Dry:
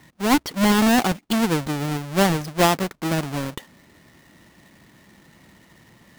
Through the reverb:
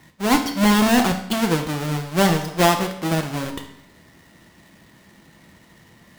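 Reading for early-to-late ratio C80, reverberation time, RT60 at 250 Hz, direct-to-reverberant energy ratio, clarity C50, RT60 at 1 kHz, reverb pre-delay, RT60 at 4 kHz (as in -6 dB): 12.0 dB, 0.75 s, 0.75 s, 4.5 dB, 9.0 dB, 0.75 s, 4 ms, 0.70 s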